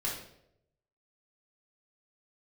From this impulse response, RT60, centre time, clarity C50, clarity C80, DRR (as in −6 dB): 0.75 s, 40 ms, 4.0 dB, 7.5 dB, −6.0 dB